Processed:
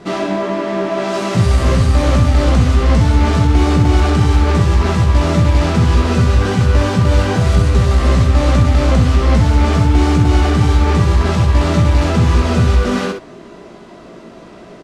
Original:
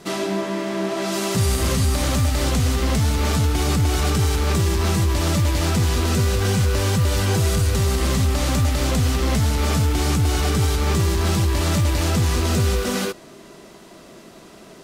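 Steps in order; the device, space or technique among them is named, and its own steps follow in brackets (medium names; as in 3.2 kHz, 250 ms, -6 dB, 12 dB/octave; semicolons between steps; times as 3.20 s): low-pass 8.5 kHz 12 dB/octave; through cloth (treble shelf 3.6 kHz -13.5 dB); early reflections 17 ms -6 dB, 65 ms -5.5 dB; trim +6 dB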